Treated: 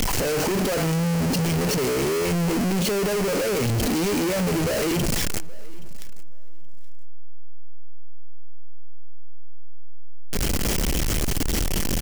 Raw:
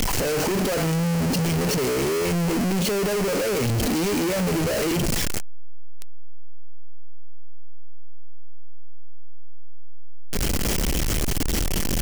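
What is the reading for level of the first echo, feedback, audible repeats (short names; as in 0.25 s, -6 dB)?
-23.0 dB, no steady repeat, 1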